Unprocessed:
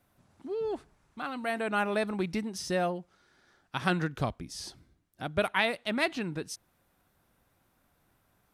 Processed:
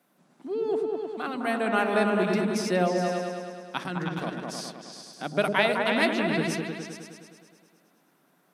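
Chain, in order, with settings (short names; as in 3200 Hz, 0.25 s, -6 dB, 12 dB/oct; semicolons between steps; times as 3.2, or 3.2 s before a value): elliptic high-pass 160 Hz; 3.83–4.49 level quantiser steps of 12 dB; on a send: repeats that get brighter 0.104 s, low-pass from 400 Hz, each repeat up 2 oct, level 0 dB; on the sum: gain +3.5 dB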